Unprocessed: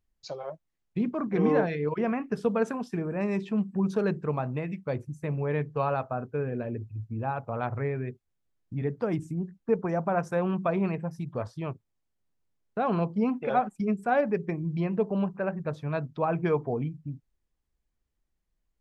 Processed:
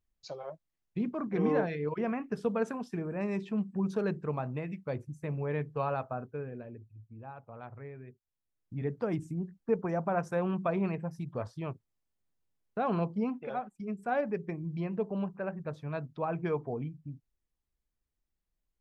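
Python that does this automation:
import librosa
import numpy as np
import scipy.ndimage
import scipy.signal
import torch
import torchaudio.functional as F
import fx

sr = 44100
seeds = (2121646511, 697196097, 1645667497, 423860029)

y = fx.gain(x, sr, db=fx.line((6.12, -4.5), (6.9, -15.0), (8.06, -15.0), (8.88, -3.5), (13.1, -3.5), (13.72, -13.0), (14.08, -6.0)))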